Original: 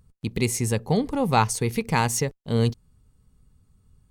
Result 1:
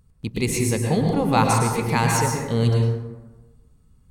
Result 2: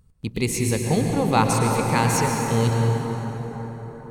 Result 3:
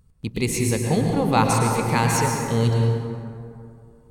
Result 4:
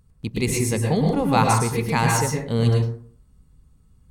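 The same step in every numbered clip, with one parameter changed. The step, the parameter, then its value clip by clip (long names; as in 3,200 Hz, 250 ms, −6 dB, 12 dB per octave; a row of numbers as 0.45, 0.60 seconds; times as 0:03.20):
dense smooth reverb, RT60: 1.2, 5.3, 2.5, 0.54 seconds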